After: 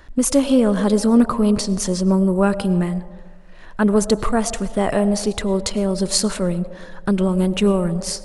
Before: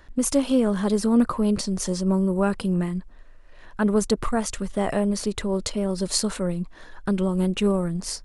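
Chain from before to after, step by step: on a send: band shelf 650 Hz +9 dB 1.1 oct + reverb RT60 1.4 s, pre-delay 65 ms, DRR 13.5 dB; on the sum: gain +5 dB

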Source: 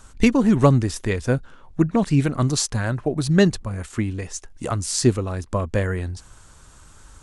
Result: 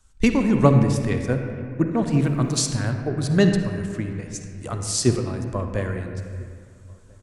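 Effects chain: outdoor echo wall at 230 m, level -21 dB; 2.11–2.67 added noise pink -55 dBFS; on a send at -4 dB: reverb RT60 2.6 s, pre-delay 47 ms; on the sum: three-band expander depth 40%; gain -3.5 dB

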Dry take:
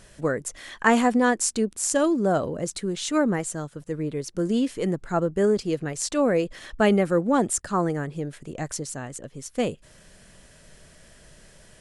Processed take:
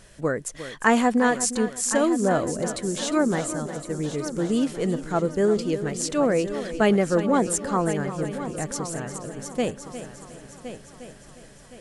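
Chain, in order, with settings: multi-head echo 0.355 s, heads first and third, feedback 51%, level -12.5 dB

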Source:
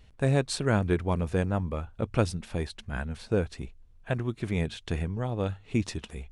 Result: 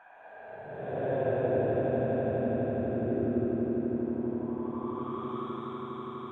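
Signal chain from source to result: LFO band-pass sine 2.1 Hz 290–4600 Hz; Paulstretch 23×, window 0.05 s, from 4.06; swelling echo 82 ms, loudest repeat 8, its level -10 dB; gain +4.5 dB

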